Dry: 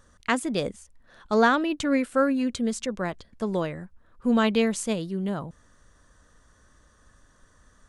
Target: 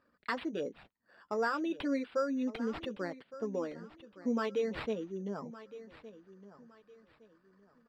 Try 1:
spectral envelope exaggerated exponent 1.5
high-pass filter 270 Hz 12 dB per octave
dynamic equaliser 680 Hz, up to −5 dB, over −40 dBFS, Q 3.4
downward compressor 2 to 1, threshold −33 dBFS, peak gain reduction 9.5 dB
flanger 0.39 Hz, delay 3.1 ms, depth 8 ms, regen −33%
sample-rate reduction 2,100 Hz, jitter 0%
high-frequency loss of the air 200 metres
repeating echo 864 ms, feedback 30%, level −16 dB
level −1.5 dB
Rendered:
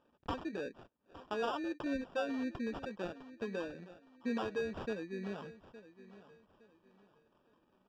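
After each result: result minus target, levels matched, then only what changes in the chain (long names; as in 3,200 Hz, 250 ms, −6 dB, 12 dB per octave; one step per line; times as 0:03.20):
sample-rate reduction: distortion +9 dB; echo 299 ms early; downward compressor: peak gain reduction +4 dB
change: sample-rate reduction 6,300 Hz, jitter 0%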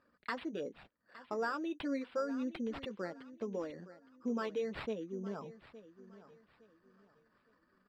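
echo 299 ms early; downward compressor: peak gain reduction +4 dB
change: repeating echo 1,163 ms, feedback 30%, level −16 dB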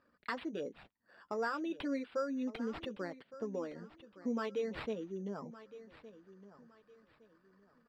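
downward compressor: peak gain reduction +4 dB
change: downward compressor 2 to 1, threshold −25 dBFS, peak gain reduction 5.5 dB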